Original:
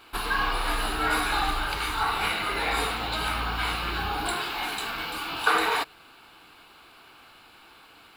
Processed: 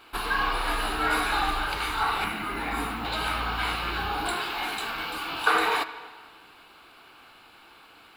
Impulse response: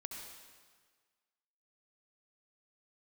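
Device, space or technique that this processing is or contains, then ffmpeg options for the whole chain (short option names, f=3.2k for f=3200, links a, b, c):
filtered reverb send: -filter_complex "[0:a]asplit=2[a][b];[b]highpass=170,lowpass=4.4k[c];[1:a]atrim=start_sample=2205[d];[c][d]afir=irnorm=-1:irlink=0,volume=-5.5dB[e];[a][e]amix=inputs=2:normalize=0,asettb=1/sr,asplit=3[f][g][h];[f]atrim=end=2.244[i];[g]atrim=start=2.24:end=3.05,asetpts=PTS-STARTPTS,afade=t=in:d=0.004:c=qsin,afade=t=out:st=0.806:d=0.004:c=qsin,equalizer=f=250:t=o:w=1:g=9,equalizer=f=500:t=o:w=1:g=-10,equalizer=f=2k:t=o:w=1:g=-3,equalizer=f=4k:t=o:w=1:g=-8,equalizer=f=8k:t=o:w=1:g=-4[j];[h]atrim=start=3.046[k];[i][j]acrossfade=d=0.004:c1=hsin:c2=qsin[l];[l][k]acrossfade=d=0.004:c1=qsin:c2=hsin,volume=-2dB"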